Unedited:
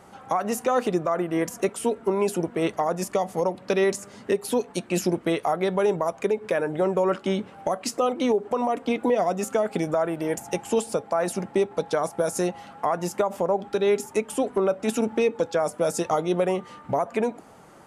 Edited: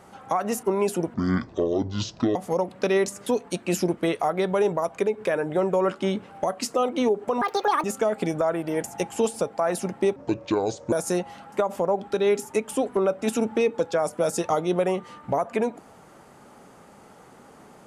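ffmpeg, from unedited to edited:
-filter_complex "[0:a]asplit=10[s0][s1][s2][s3][s4][s5][s6][s7][s8][s9];[s0]atrim=end=0.632[s10];[s1]atrim=start=2.028:end=2.544[s11];[s2]atrim=start=2.54:end=3.22,asetpts=PTS-STARTPTS,asetrate=24696,aresample=44100[s12];[s3]atrim=start=3.216:end=4.132[s13];[s4]atrim=start=4.498:end=8.654[s14];[s5]atrim=start=8.65:end=9.37,asetpts=PTS-STARTPTS,asetrate=74970,aresample=44100[s15];[s6]atrim=start=9.366:end=11.694[s16];[s7]atrim=start=11.69:end=12.21,asetpts=PTS-STARTPTS,asetrate=29988,aresample=44100[s17];[s8]atrim=start=12.206:end=12.812[s18];[s9]atrim=start=13.128[s19];[s10][s11]acrossfade=d=0.004:c1=hsin:c2=hsin[s20];[s20][s12]acrossfade=d=0.004:c1=hsin:c2=hsin[s21];[s21][s13]acrossfade=d=0.004:c1=hsin:c2=hsin[s22];[s22][s14]acrossfade=d=0.004:c1=hsin:c2=hsin[s23];[s23][s15]acrossfade=d=0.004:c1=hsin:c2=hsin[s24];[s24][s16]acrossfade=d=0.004:c1=hsin:c2=hsin[s25];[s25][s17]acrossfade=d=0.004:c1=hsin:c2=hsin[s26];[s26][s18]acrossfade=d=0.004:c1=hsin:c2=hsin[s27];[s27][s19]acrossfade=d=0.004:c1=hsin:c2=hsin"

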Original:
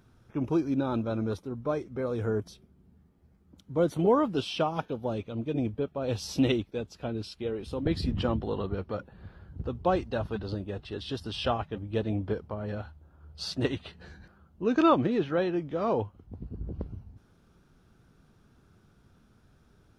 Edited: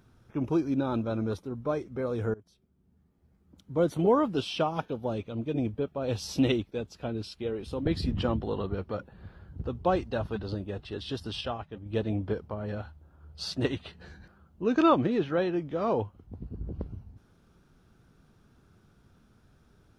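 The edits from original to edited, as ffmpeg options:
-filter_complex "[0:a]asplit=4[s0][s1][s2][s3];[s0]atrim=end=2.34,asetpts=PTS-STARTPTS,afade=t=out:st=2.336:d=0.004:c=hsin:silence=0.0668344[s4];[s1]atrim=start=2.34:end=11.412,asetpts=PTS-STARTPTS,afade=t=in:d=1.4:silence=0.0668344[s5];[s2]atrim=start=11.408:end=11.862,asetpts=PTS-STARTPTS,volume=0.501[s6];[s3]atrim=start=11.858[s7];[s4][s5]concat=n=2:v=0:a=1[s8];[s8][s6]acrossfade=d=0.004:c1=hsin:c2=hsin[s9];[s9][s7]acrossfade=d=0.004:c1=hsin:c2=hsin"

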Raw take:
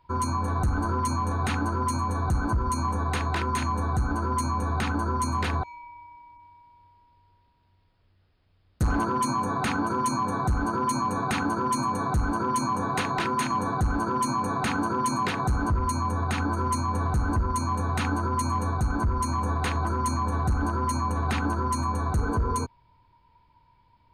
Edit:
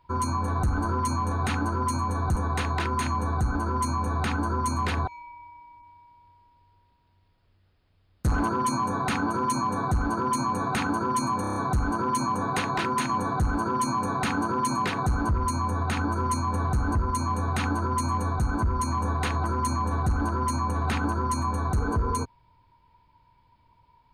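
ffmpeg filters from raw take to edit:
-filter_complex "[0:a]asplit=7[s0][s1][s2][s3][s4][s5][s6];[s0]atrim=end=2.362[s7];[s1]atrim=start=2.918:end=12.002[s8];[s2]atrim=start=11.968:end=12.002[s9];[s3]atrim=start=11.968:end=12.002[s10];[s4]atrim=start=11.968:end=12.002[s11];[s5]atrim=start=11.968:end=12.002[s12];[s6]atrim=start=11.968[s13];[s7][s8]acrossfade=d=0.004:c1=hsin:c2=hsin[s14];[s14][s9]acrossfade=d=0.004:c1=hsin:c2=hsin[s15];[s15][s10]acrossfade=d=0.004:c1=hsin:c2=hsin[s16];[s16][s11]acrossfade=d=0.004:c1=hsin:c2=hsin[s17];[s17][s12]acrossfade=d=0.004:c1=hsin:c2=hsin[s18];[s18][s13]acrossfade=d=0.004:c1=hsin:c2=hsin"

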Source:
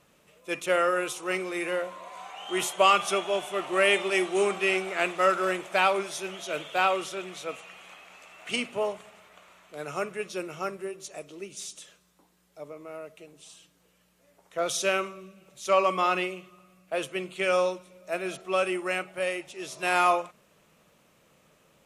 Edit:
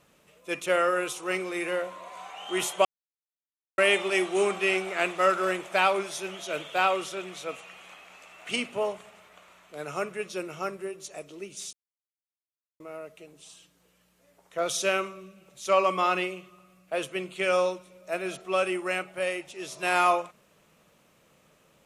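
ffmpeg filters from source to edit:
-filter_complex "[0:a]asplit=5[s0][s1][s2][s3][s4];[s0]atrim=end=2.85,asetpts=PTS-STARTPTS,afade=t=out:st=2.846:d=0.004:c=hsin[s5];[s1]atrim=start=2.85:end=3.78,asetpts=PTS-STARTPTS,volume=0[s6];[s2]atrim=start=3.78:end=11.73,asetpts=PTS-STARTPTS,afade=t=in:d=0.004:c=hsin,afade=t=out:st=7.946:d=0.004:c=hsin[s7];[s3]atrim=start=11.73:end=12.8,asetpts=PTS-STARTPTS,volume=0[s8];[s4]atrim=start=12.8,asetpts=PTS-STARTPTS,afade=t=in:d=0.004:c=hsin[s9];[s5][s6][s7][s8][s9]concat=n=5:v=0:a=1"

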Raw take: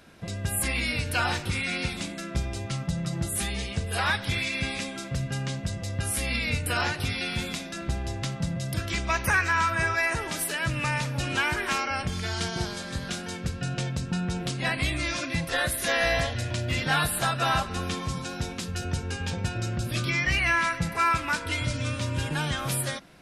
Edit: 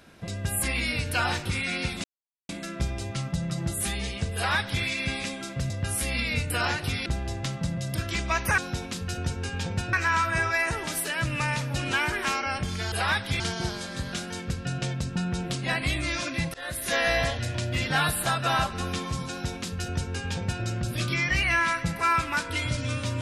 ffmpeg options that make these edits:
-filter_complex "[0:a]asplit=9[s0][s1][s2][s3][s4][s5][s6][s7][s8];[s0]atrim=end=2.04,asetpts=PTS-STARTPTS,afade=t=out:st=2.036:d=0.004:c=hsin,apad=pad_dur=0.45[s9];[s1]atrim=start=2.04:end=5.252,asetpts=PTS-STARTPTS,afade=t=in:d=0.004:c=hsin[s10];[s2]atrim=start=5.858:end=7.222[s11];[s3]atrim=start=7.848:end=9.372[s12];[s4]atrim=start=18.248:end=19.602[s13];[s5]atrim=start=9.368:end=12.362[s14];[s6]atrim=start=3.898:end=4.382[s15];[s7]atrim=start=12.358:end=15.5,asetpts=PTS-STARTPTS,afade=t=out:st=3.138:d=0.004:c=hsin:silence=0.0707946[s16];[s8]atrim=start=15.5,asetpts=PTS-STARTPTS,afade=t=in:d=0.38:silence=0.0707946[s17];[s9][s10]concat=n=2:v=0:a=1[s18];[s18][s11]acrossfade=d=0.004:c1=hsin:c2=hsin[s19];[s19][s12]acrossfade=d=0.004:c1=hsin:c2=hsin[s20];[s20][s13]acrossfade=d=0.004:c1=hsin:c2=hsin[s21];[s21][s14]acrossfade=d=0.004:c1=hsin:c2=hsin[s22];[s22][s15]acrossfade=d=0.004:c1=hsin:c2=hsin[s23];[s16][s17]concat=n=2:v=0:a=1[s24];[s23][s24]acrossfade=d=0.004:c1=hsin:c2=hsin"

